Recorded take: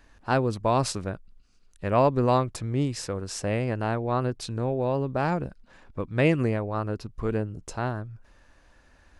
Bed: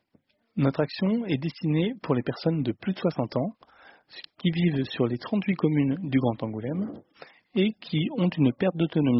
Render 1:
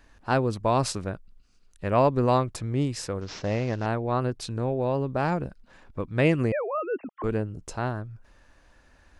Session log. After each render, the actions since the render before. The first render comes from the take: 3.21–3.86 CVSD 32 kbps; 6.52–7.24 sine-wave speech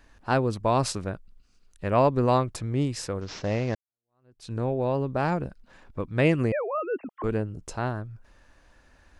3.75–4.52 fade in exponential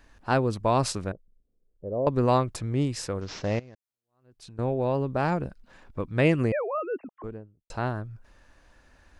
1.12–2.07 ladder low-pass 570 Hz, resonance 55%; 3.59–4.59 compressor 10:1, threshold -43 dBFS; 6.62–7.7 studio fade out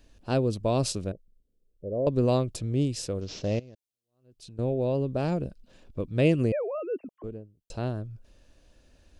band shelf 1300 Hz -11 dB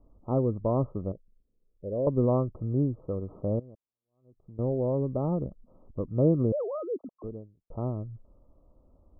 Chebyshev low-pass 1300 Hz, order 10; dynamic EQ 690 Hz, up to -4 dB, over -45 dBFS, Q 5.7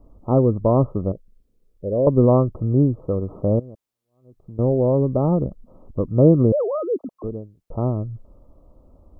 gain +9.5 dB

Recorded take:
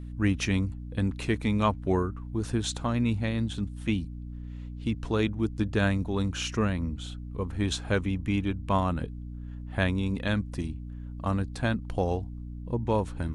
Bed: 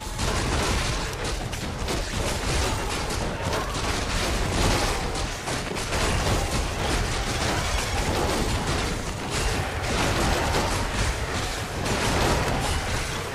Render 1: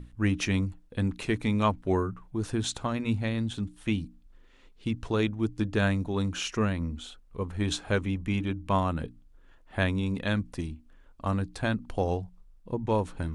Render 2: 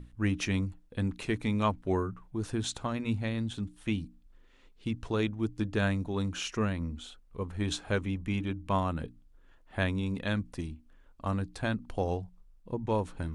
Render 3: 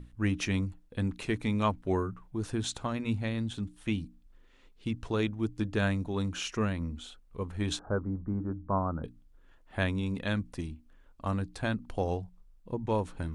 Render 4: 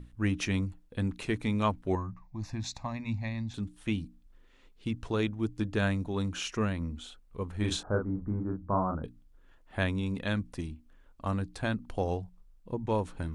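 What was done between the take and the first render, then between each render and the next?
notches 60/120/180/240/300 Hz
gain -3 dB
7.79–9.04 elliptic low-pass 1400 Hz, stop band 50 dB
1.95–3.54 fixed phaser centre 2100 Hz, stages 8; 7.57–8.97 doubler 38 ms -4.5 dB

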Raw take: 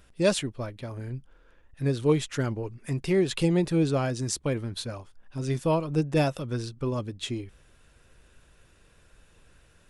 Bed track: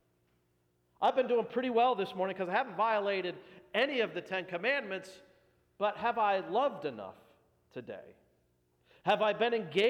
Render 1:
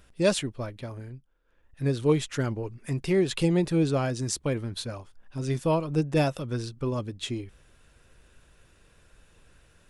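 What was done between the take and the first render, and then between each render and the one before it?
0.85–1.85 dip -15.5 dB, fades 0.42 s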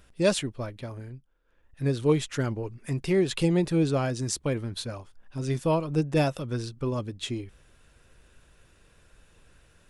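nothing audible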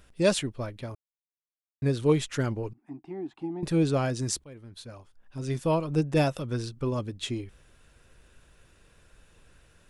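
0.95–1.82 mute; 2.73–3.63 double band-pass 490 Hz, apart 1.4 oct; 4.44–5.85 fade in, from -22.5 dB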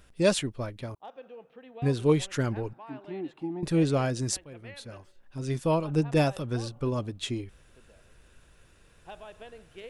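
add bed track -17 dB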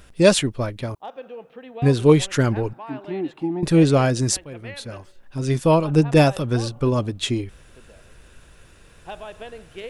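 gain +9 dB; limiter -3 dBFS, peak gain reduction 1.5 dB

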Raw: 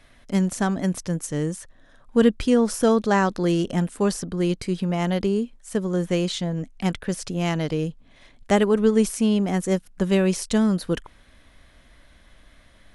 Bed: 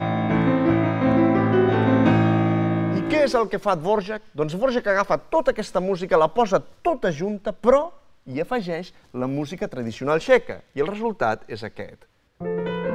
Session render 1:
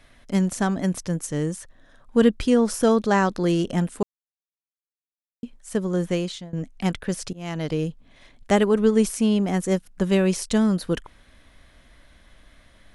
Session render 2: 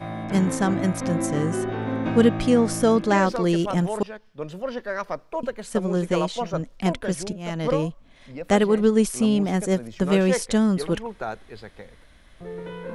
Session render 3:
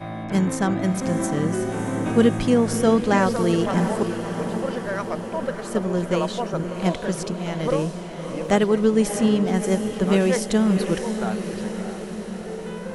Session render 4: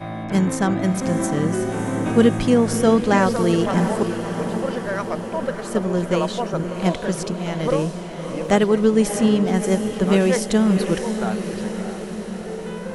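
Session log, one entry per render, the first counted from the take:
4.03–5.43 mute; 6.07–6.53 fade out, to -20 dB; 7.33–7.73 fade in, from -22 dB
add bed -9 dB
diffused feedback echo 0.638 s, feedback 65%, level -8.5 dB
gain +2 dB

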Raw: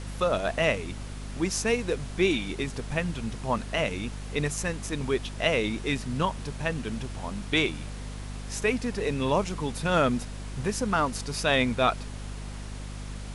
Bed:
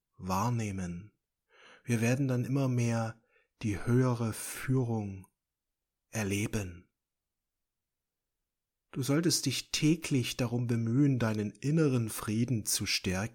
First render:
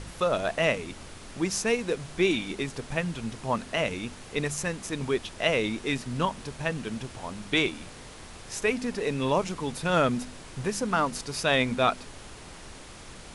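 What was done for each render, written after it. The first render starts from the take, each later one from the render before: de-hum 50 Hz, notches 5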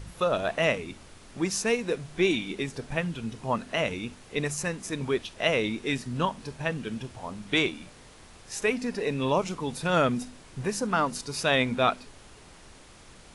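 noise print and reduce 6 dB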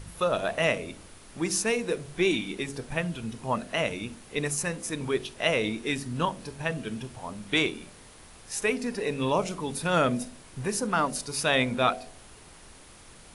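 bell 10000 Hz +8 dB 0.39 oct; de-hum 46.6 Hz, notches 16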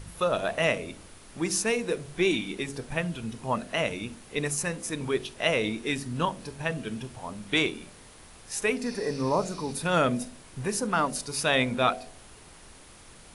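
8.88–9.7 spectral repair 2000–6100 Hz both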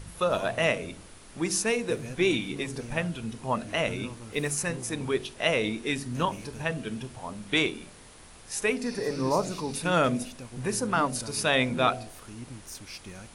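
add bed -12 dB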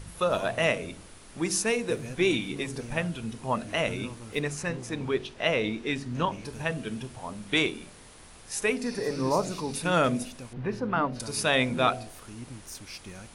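4.39–6.45 air absorption 77 m; 10.53–11.2 air absorption 300 m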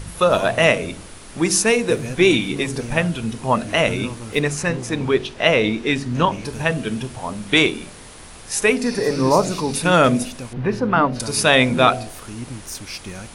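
gain +10 dB; limiter -2 dBFS, peak gain reduction 2 dB

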